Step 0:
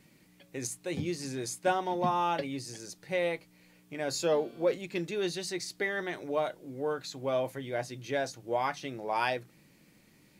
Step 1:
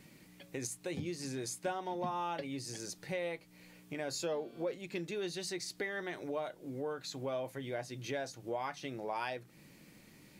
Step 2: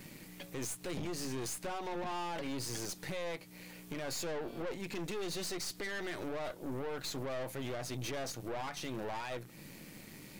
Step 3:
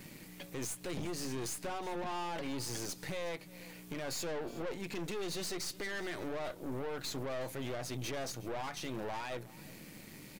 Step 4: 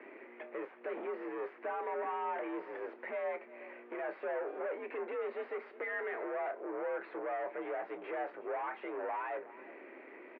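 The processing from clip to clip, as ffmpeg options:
-af "acompressor=threshold=-43dB:ratio=2.5,volume=3dB"
-af "highshelf=f=12k:g=7,alimiter=level_in=9.5dB:limit=-24dB:level=0:latency=1:release=76,volume=-9.5dB,aeval=exprs='(tanh(224*val(0)+0.7)-tanh(0.7))/224':c=same,volume=10.5dB"
-af "aecho=1:1:367:0.1"
-filter_complex "[0:a]asoftclip=type=tanh:threshold=-36dB,asplit=2[a][b];[b]adelay=29,volume=-13dB[c];[a][c]amix=inputs=2:normalize=0,highpass=f=290:t=q:w=0.5412,highpass=f=290:t=q:w=1.307,lowpass=f=2.1k:t=q:w=0.5176,lowpass=f=2.1k:t=q:w=0.7071,lowpass=f=2.1k:t=q:w=1.932,afreqshift=59,volume=5.5dB"

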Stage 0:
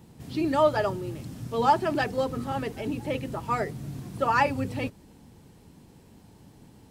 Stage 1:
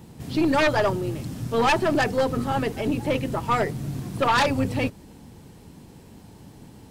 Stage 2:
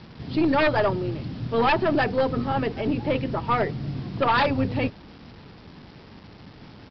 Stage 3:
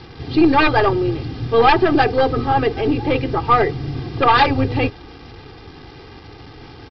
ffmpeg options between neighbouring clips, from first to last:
-af "aeval=exprs='(tanh(6.31*val(0)+0.8)-tanh(0.8))/6.31':c=same,aeval=exprs='0.133*sin(PI/2*1.58*val(0)/0.133)':c=same,volume=3.5dB"
-af "highshelf=f=4.2k:g=-6,aresample=11025,acrusher=bits=7:mix=0:aa=0.000001,aresample=44100"
-af "aecho=1:1:2.5:0.71,volume=6dB"

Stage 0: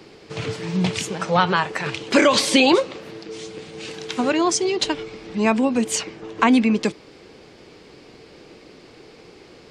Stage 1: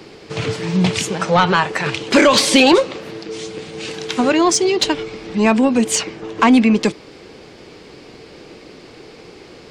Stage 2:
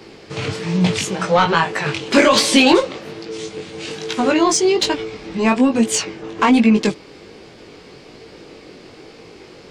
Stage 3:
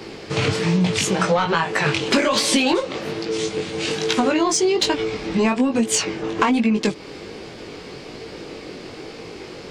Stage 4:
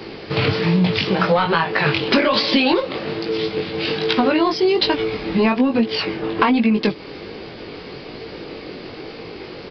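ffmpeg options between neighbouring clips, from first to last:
-af "acontrast=76,volume=-1dB"
-af "flanger=delay=17.5:depth=4.5:speed=1.2,volume=2dB"
-af "acompressor=threshold=-20dB:ratio=12,volume=5dB"
-af "aresample=11025,aresample=44100,volume=2dB"

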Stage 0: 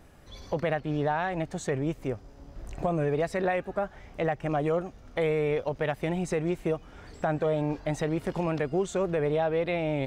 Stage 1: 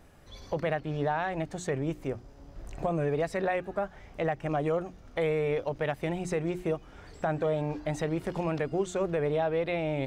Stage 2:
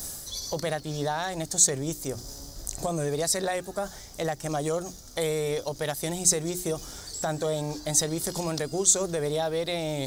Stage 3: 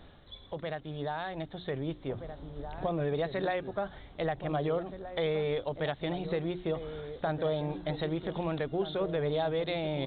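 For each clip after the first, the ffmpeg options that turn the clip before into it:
-af "bandreject=f=60:t=h:w=6,bandreject=f=120:t=h:w=6,bandreject=f=180:t=h:w=6,bandreject=f=240:t=h:w=6,bandreject=f=300:t=h:w=6,bandreject=f=360:t=h:w=6,volume=-1.5dB"
-af "areverse,acompressor=mode=upward:threshold=-34dB:ratio=2.5,areverse,aexciter=amount=13.5:drive=6.3:freq=4k"
-filter_complex "[0:a]aresample=8000,aresample=44100,asplit=2[a][b];[b]adelay=1574,volume=-10dB,highshelf=f=4k:g=-35.4[c];[a][c]amix=inputs=2:normalize=0,dynaudnorm=f=630:g=5:m=5dB,volume=-7.5dB"

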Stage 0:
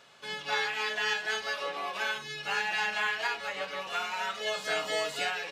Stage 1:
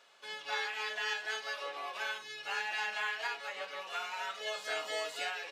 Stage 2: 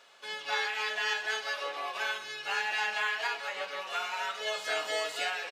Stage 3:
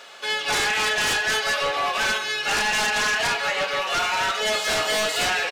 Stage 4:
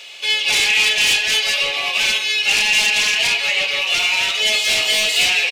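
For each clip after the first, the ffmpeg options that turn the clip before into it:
-af "highpass=380,volume=-5.5dB"
-af "aecho=1:1:130|260|390|520|650:0.158|0.0888|0.0497|0.0278|0.0156,volume=4.5dB"
-af "bandreject=f=1k:w=14,aeval=exprs='0.112*sin(PI/2*3.55*val(0)/0.112)':c=same"
-af "highshelf=f=1.9k:t=q:w=3:g=8.5,volume=-2.5dB"

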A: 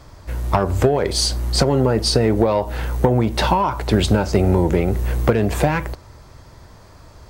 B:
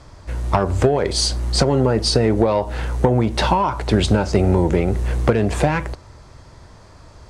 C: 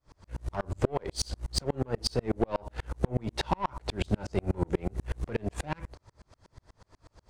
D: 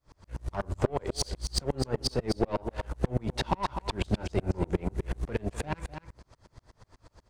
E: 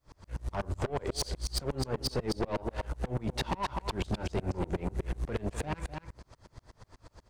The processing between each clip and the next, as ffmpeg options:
-af "lowpass=f=10k:w=0.5412,lowpass=f=10k:w=1.3066"
-af "aeval=exprs='0.668*(cos(1*acos(clip(val(0)/0.668,-1,1)))-cos(1*PI/2))+0.0376*(cos(5*acos(clip(val(0)/0.668,-1,1)))-cos(5*PI/2))+0.0335*(cos(8*acos(clip(val(0)/0.668,-1,1)))-cos(8*PI/2))':c=same,aeval=exprs='val(0)*pow(10,-39*if(lt(mod(-8.2*n/s,1),2*abs(-8.2)/1000),1-mod(-8.2*n/s,1)/(2*abs(-8.2)/1000),(mod(-8.2*n/s,1)-2*abs(-8.2)/1000)/(1-2*abs(-8.2)/1000))/20)':c=same,volume=-6.5dB"
-af "aecho=1:1:253:0.376"
-af "asoftclip=type=tanh:threshold=-27dB,volume=2dB"

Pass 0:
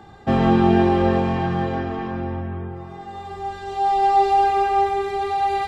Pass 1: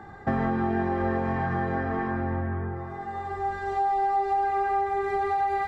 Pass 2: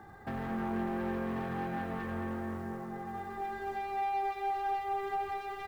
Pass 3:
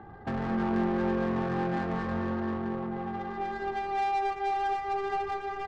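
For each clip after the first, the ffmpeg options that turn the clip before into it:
-af "highshelf=f=2.3k:t=q:w=3:g=-6.5,bandreject=f=58.58:t=h:w=4,bandreject=f=117.16:t=h:w=4,bandreject=f=175.74:t=h:w=4,bandreject=f=234.32:t=h:w=4,bandreject=f=292.9:t=h:w=4,bandreject=f=351.48:t=h:w=4,bandreject=f=410.06:t=h:w=4,bandreject=f=468.64:t=h:w=4,bandreject=f=527.22:t=h:w=4,bandreject=f=585.8:t=h:w=4,bandreject=f=644.38:t=h:w=4,acompressor=threshold=-23dB:ratio=6"
-filter_complex "[0:a]acrusher=bits=6:mode=log:mix=0:aa=0.000001,asoftclip=type=tanh:threshold=-26dB,asplit=2[a][b];[b]adelay=220,lowpass=f=3.5k:p=1,volume=-3dB,asplit=2[c][d];[d]adelay=220,lowpass=f=3.5k:p=1,volume=0.53,asplit=2[e][f];[f]adelay=220,lowpass=f=3.5k:p=1,volume=0.53,asplit=2[g][h];[h]adelay=220,lowpass=f=3.5k:p=1,volume=0.53,asplit=2[i][j];[j]adelay=220,lowpass=f=3.5k:p=1,volume=0.53,asplit=2[k][l];[l]adelay=220,lowpass=f=3.5k:p=1,volume=0.53,asplit=2[m][n];[n]adelay=220,lowpass=f=3.5k:p=1,volume=0.53[o];[a][c][e][g][i][k][m][o]amix=inputs=8:normalize=0,volume=-7.5dB"
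-filter_complex "[0:a]asplit=2[a][b];[b]adelay=17,volume=-13.5dB[c];[a][c]amix=inputs=2:normalize=0,aecho=1:1:457|914|1371|1828:0.2|0.0798|0.0319|0.0128,adynamicsmooth=sensitivity=7.5:basefreq=1.2k,volume=6dB"

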